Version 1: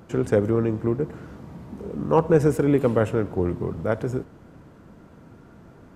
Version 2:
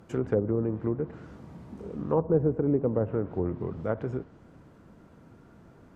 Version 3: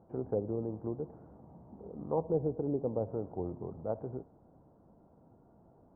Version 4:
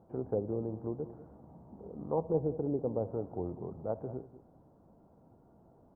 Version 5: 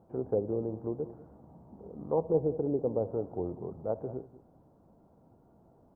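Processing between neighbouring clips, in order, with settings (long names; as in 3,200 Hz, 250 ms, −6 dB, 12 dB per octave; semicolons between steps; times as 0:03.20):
treble cut that deepens with the level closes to 710 Hz, closed at −16 dBFS; level −5.5 dB
transistor ladder low-pass 920 Hz, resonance 50%
single-tap delay 194 ms −15 dB
dynamic equaliser 450 Hz, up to +4 dB, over −42 dBFS, Q 1.2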